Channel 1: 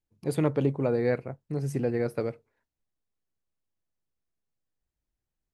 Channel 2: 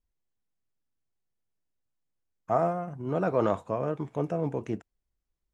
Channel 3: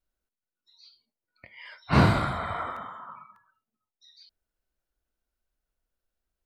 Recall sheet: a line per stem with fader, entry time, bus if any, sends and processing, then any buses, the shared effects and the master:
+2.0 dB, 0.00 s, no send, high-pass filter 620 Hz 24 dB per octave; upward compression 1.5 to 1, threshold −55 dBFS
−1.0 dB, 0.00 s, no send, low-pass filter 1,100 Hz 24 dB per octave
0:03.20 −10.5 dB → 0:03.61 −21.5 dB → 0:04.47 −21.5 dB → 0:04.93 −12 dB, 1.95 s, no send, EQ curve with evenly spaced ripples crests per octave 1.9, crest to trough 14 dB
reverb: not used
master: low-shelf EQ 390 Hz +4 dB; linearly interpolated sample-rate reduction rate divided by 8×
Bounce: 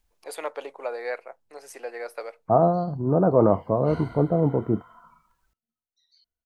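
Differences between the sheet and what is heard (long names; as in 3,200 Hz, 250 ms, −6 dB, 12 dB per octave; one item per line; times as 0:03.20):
stem 2 −1.0 dB → +6.0 dB
master: missing linearly interpolated sample-rate reduction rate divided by 8×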